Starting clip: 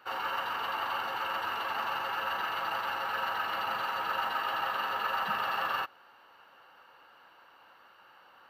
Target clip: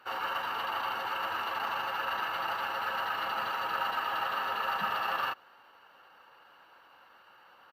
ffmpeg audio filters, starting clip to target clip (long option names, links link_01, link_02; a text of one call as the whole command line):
ffmpeg -i in.wav -af "atempo=1.1" -ar 48000 -c:a libopus -b:a 64k out.opus